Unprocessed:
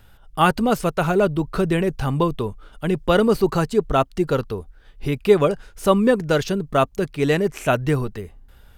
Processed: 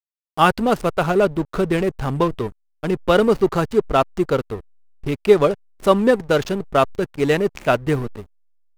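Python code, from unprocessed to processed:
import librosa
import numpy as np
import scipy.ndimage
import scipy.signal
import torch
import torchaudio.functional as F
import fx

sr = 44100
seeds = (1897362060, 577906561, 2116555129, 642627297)

y = fx.bass_treble(x, sr, bass_db=-4, treble_db=0)
y = fx.backlash(y, sr, play_db=-25.5)
y = y * librosa.db_to_amplitude(2.5)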